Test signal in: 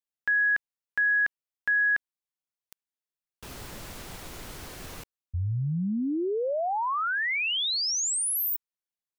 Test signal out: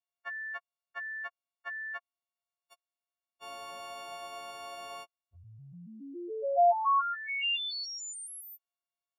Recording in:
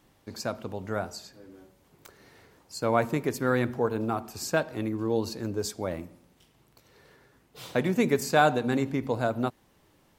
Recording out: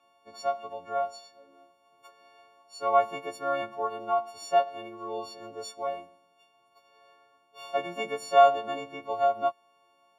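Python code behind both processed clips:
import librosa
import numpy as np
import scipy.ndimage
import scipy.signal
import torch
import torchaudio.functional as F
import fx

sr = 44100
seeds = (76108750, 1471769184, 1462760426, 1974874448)

y = fx.freq_snap(x, sr, grid_st=4)
y = fx.dynamic_eq(y, sr, hz=240.0, q=2.7, threshold_db=-41.0, ratio=4.0, max_db=-4)
y = fx.vowel_filter(y, sr, vowel='a')
y = y * librosa.db_to_amplitude(8.0)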